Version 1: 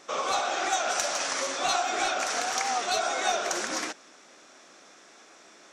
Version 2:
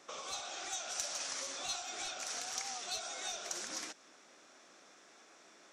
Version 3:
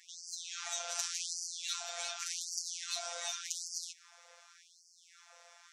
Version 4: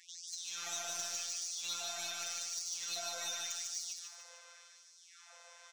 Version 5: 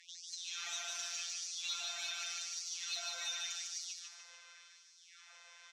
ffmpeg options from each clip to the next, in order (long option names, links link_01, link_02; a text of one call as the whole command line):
ffmpeg -i in.wav -filter_complex "[0:a]acrossover=split=140|3000[link_01][link_02][link_03];[link_02]acompressor=threshold=-39dB:ratio=5[link_04];[link_01][link_04][link_03]amix=inputs=3:normalize=0,volume=-7.5dB" out.wav
ffmpeg -i in.wav -af "afftfilt=real='hypot(re,im)*cos(PI*b)':imag='0':win_size=1024:overlap=0.75,afftfilt=real='re*gte(b*sr/1024,420*pow(4500/420,0.5+0.5*sin(2*PI*0.87*pts/sr)))':imag='im*gte(b*sr/1024,420*pow(4500/420,0.5+0.5*sin(2*PI*0.87*pts/sr)))':win_size=1024:overlap=0.75,volume=5.5dB" out.wav
ffmpeg -i in.wav -af "asoftclip=type=tanh:threshold=-29dB,aecho=1:1:149|298|447|596|745:0.668|0.281|0.118|0.0495|0.0208" out.wav
ffmpeg -i in.wav -af "bandpass=frequency=2700:width_type=q:width=0.88:csg=0,volume=3dB" out.wav